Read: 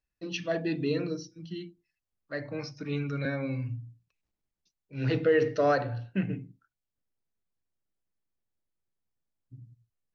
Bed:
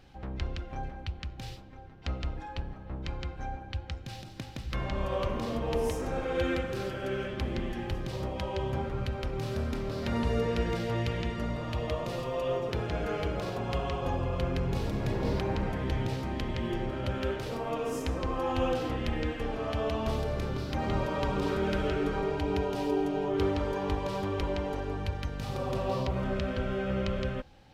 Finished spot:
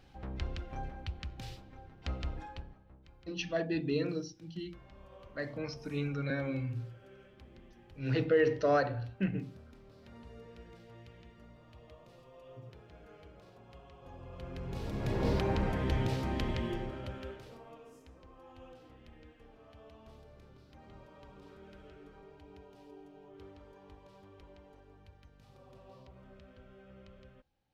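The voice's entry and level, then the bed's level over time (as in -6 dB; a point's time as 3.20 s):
3.05 s, -3.0 dB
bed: 2.42 s -3.5 dB
3.03 s -23 dB
13.94 s -23 dB
15.23 s -0.5 dB
16.49 s -0.5 dB
18.04 s -24.5 dB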